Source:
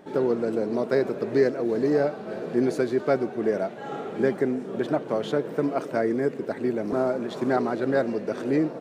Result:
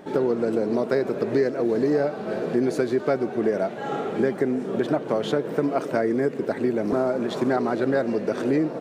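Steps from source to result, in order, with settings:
downward compressor 3 to 1, threshold −25 dBFS, peak gain reduction 8 dB
level +5.5 dB

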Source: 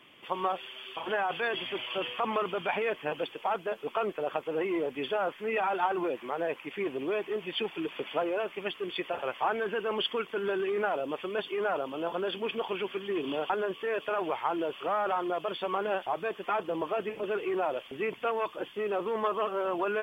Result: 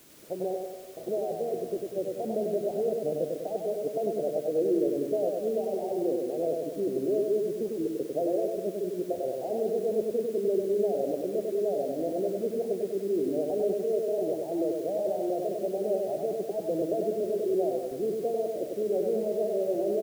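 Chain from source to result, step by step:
Butterworth low-pass 670 Hz 72 dB per octave
in parallel at −8.5 dB: bit-depth reduction 8 bits, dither triangular
on the sum: repeating echo 98 ms, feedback 57%, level −3.5 dB

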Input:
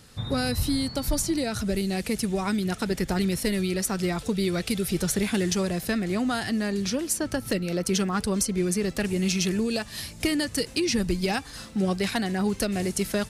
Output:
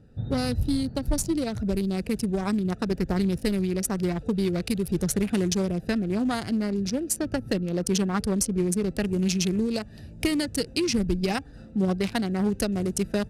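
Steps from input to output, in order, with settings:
adaptive Wiener filter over 41 samples
level +1.5 dB

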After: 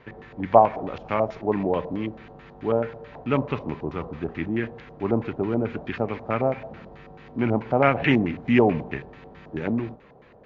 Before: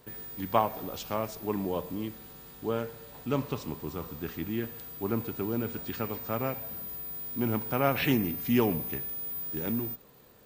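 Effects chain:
auto-filter low-pass square 4.6 Hz 720–2,200 Hz
level +6 dB
MP3 56 kbit/s 16,000 Hz

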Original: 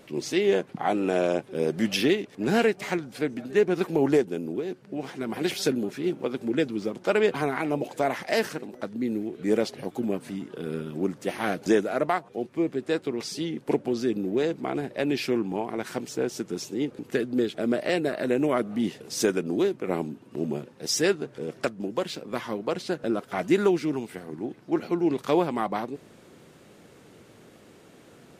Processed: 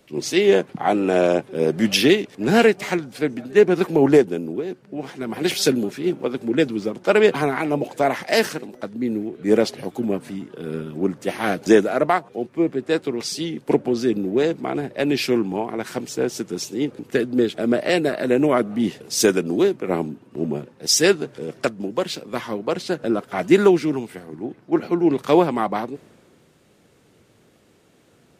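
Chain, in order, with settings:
multiband upward and downward expander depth 40%
level +6 dB

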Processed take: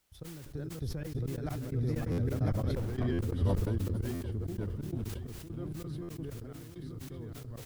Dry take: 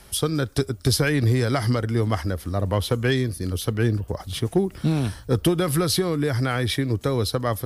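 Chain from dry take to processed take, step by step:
feedback delay that plays each chunk backwards 531 ms, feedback 61%, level −0.5 dB
source passing by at 0:02.84, 18 m/s, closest 1.3 metres
convolution reverb RT60 0.75 s, pre-delay 3 ms, DRR 18 dB
in parallel at −4 dB: wrap-around overflow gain 17.5 dB
on the sum: downward compressor 6 to 1, threshold −33 dBFS, peak gain reduction 15.5 dB
on a send: single-tap delay 443 ms −19 dB
on the sum: dynamic equaliser 110 Hz, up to −5 dB, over −54 dBFS, Q 2.5
gate pattern ".x..xx.xx.x" 131 BPM −24 dB
background noise blue −61 dBFS
spectral tilt −4 dB per octave
buffer that repeats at 0:02.11/0:03.12/0:04.14/0:06.02, samples 512, times 5
level that may fall only so fast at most 24 dB per second
level −2 dB

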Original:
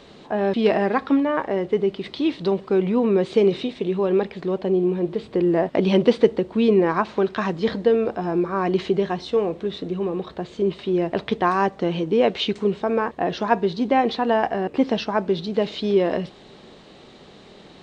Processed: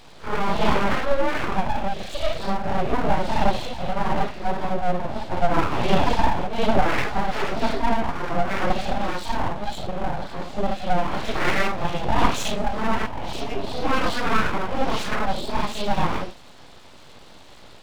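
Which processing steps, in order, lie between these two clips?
random phases in long frames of 200 ms
healed spectral selection 0:13.09–0:13.74, 350–2,200 Hz after
full-wave rectification
level +2 dB

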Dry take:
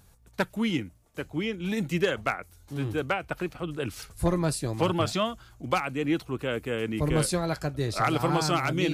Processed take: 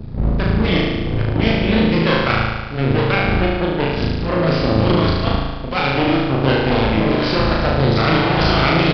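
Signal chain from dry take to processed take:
wind on the microphone 110 Hz −30 dBFS
harmonic generator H 3 −18 dB, 5 −24 dB, 7 −26 dB, 8 −15 dB, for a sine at −12.5 dBFS
compressor whose output falls as the input rises −26 dBFS, ratio −0.5
on a send: flutter between parallel walls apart 6.3 metres, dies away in 1.3 s
on the sum: downsampling to 11,025 Hz
level +7.5 dB

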